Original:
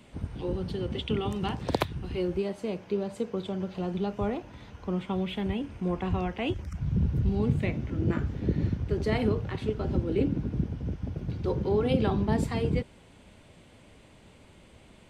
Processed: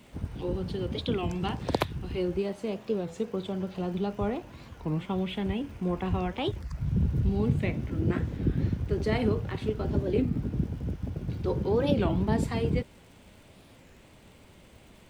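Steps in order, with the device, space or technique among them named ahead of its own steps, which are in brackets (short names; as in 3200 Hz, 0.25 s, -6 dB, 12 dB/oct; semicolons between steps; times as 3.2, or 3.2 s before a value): warped LP (record warp 33 1/3 rpm, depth 250 cents; crackle; pink noise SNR 37 dB)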